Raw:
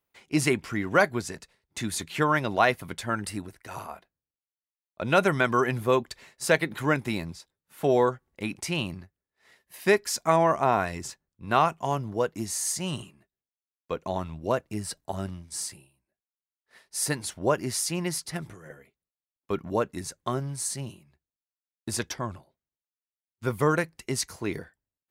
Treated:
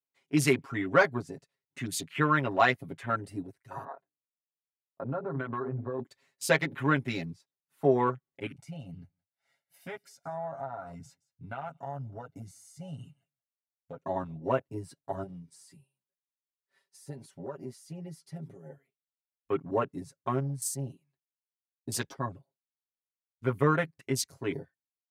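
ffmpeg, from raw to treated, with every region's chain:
-filter_complex "[0:a]asettb=1/sr,asplit=3[s0][s1][s2];[s0]atrim=end=3.844[s3];[s1]atrim=start=3.84:end=5.99,asetpts=PTS-STARTPTS,afade=t=in:d=0.004:c=qsin,afade=t=out:st=2.146:d=0.004:c=qsin,lowpass=1300,bandreject=f=50:t=h:w=6,bandreject=f=100:t=h:w=6,bandreject=f=150:t=h:w=6,bandreject=f=200:t=h:w=6,bandreject=f=250:t=h:w=6,bandreject=f=300:t=h:w=6,bandreject=f=350:t=h:w=6,bandreject=f=400:t=h:w=6,bandreject=f=450:t=h:w=6,acompressor=threshold=0.0398:ratio=12:attack=3.2:release=140:knee=1:detection=peak[s4];[s2]atrim=start=5.986[s5];[s3][s4]acrossfade=d=0.004:c1=hsin:c2=qsin[s6];[s6][s5]acrossfade=d=0.004:c1=qsin:c2=hsin,asettb=1/sr,asplit=3[s7][s8][s9];[s7]atrim=end=8.464[s10];[s8]atrim=start=8.46:end=14.01,asetpts=PTS-STARTPTS,afade=t=in:d=0.004:c=qsin,afade=t=out:st=5.546:d=0.004:c=qsin,aecho=1:1:1.4:0.83,atrim=end_sample=244755,acompressor=threshold=0.0178:ratio=5:attack=3.2:release=140:knee=1:detection=peak,aecho=1:1:172:0.0794,atrim=end_sample=244755[s11];[s9]atrim=start=14.006[s12];[s10][s11]acrossfade=d=0.004:c1=hsin:c2=qsin[s13];[s13][s12]acrossfade=d=0.004:c1=qsin:c2=hsin,asettb=1/sr,asplit=3[s14][s15][s16];[s14]atrim=end=15.234[s17];[s15]atrim=start=15.23:end=18.7,asetpts=PTS-STARTPTS,afade=t=in:d=0.004:c=qsin,afade=t=out:st=3.466:d=0.004:c=qsin,aecho=1:1:5.2:0.48,atrim=end_sample=153027,acompressor=threshold=0.02:ratio=6:attack=3.2:release=140:knee=1:detection=peak[s18];[s16]atrim=start=18.696[s19];[s17][s18]acrossfade=d=0.004:c1=hsin:c2=qsin[s20];[s20][s19]acrossfade=d=0.004:c1=qsin:c2=hsin,highpass=100,afwtdn=0.0112,aecho=1:1:7.3:1,volume=0.596"

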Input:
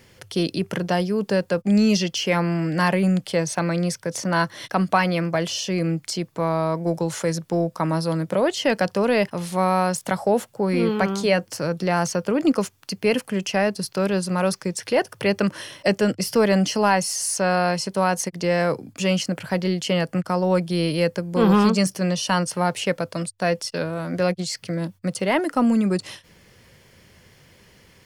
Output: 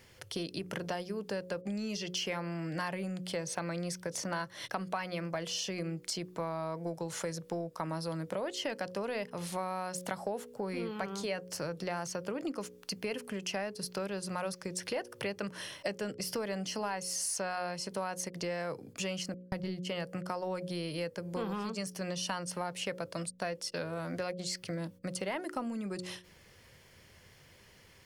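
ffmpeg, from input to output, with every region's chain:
-filter_complex "[0:a]asettb=1/sr,asplit=3[s0][s1][s2];[s0]atrim=end=19.344[s3];[s1]atrim=start=19.34:end=19.87,asetpts=PTS-STARTPTS,afade=t=in:d=0.004:c=qsin,afade=t=out:st=0.526:d=0.004:c=qsin,agate=range=0.00316:threshold=0.0398:ratio=16:release=100:detection=peak,bass=f=250:g=9,treble=f=4000:g=1[s4];[s2]atrim=start=19.866[s5];[s3][s4]acrossfade=d=0.004:c1=hsin:c2=qsin[s6];[s6][s5]acrossfade=d=0.004:c1=qsin:c2=hsin,bandreject=f=60.5:t=h:w=4,bandreject=f=121:t=h:w=4,bandreject=f=181.5:t=h:w=4,bandreject=f=242:t=h:w=4,bandreject=f=302.5:t=h:w=4,bandreject=f=363:t=h:w=4,bandreject=f=423.5:t=h:w=4,bandreject=f=484:t=h:w=4,bandreject=f=544.5:t=h:w=4,acompressor=threshold=0.0501:ratio=6,equalizer=f=220:w=0.92:g=-4,volume=0.531"

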